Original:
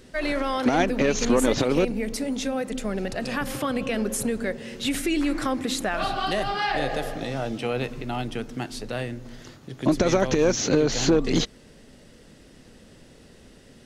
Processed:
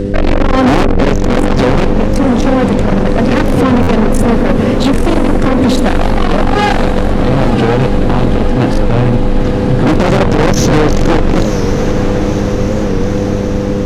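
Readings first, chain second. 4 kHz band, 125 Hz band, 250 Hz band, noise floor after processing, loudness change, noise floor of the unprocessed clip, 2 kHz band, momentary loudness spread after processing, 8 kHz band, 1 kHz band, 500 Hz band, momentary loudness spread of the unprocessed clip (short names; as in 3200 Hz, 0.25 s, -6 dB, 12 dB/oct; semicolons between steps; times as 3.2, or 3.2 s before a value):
+8.0 dB, +20.5 dB, +15.0 dB, -13 dBFS, +13.5 dB, -51 dBFS, +11.0 dB, 4 LU, +4.5 dB, +14.0 dB, +13.0 dB, 11 LU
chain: tilt -3.5 dB/oct; tube stage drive 28 dB, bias 0.55; buzz 100 Hz, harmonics 5, -39 dBFS -1 dB/oct; diffused feedback echo 1.009 s, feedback 70%, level -8.5 dB; maximiser +23 dB; stuck buffer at 3.82, samples 512, times 4; record warp 45 rpm, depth 100 cents; gain -1 dB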